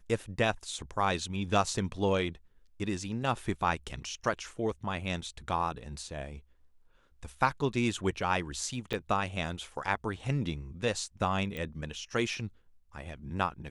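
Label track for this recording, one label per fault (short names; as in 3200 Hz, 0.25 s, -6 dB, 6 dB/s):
8.930000	8.940000	gap 6 ms
11.570000	11.570000	pop -24 dBFS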